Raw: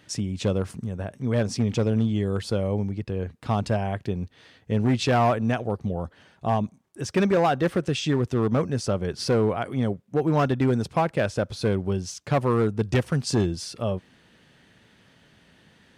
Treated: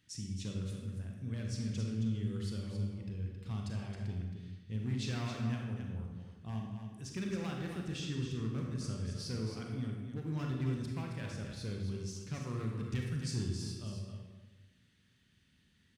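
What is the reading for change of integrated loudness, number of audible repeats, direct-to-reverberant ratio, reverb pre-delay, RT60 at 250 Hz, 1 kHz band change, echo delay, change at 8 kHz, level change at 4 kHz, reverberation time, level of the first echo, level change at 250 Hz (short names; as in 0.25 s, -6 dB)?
-13.5 dB, 1, -0.5 dB, 32 ms, 1.3 s, -23.5 dB, 0.27 s, -11.0 dB, -12.0 dB, 1.2 s, -8.0 dB, -13.5 dB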